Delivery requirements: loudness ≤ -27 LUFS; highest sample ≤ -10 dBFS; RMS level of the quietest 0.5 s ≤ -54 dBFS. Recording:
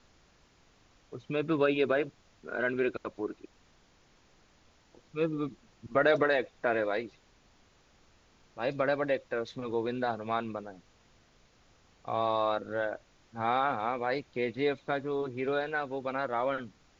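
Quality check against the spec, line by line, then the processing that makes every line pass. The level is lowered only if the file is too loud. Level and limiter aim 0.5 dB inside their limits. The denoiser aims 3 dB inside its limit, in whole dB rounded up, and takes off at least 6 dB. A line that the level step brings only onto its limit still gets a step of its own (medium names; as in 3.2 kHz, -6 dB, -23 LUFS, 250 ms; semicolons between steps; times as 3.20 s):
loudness -31.5 LUFS: pass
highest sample -14.0 dBFS: pass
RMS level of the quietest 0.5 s -64 dBFS: pass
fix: none needed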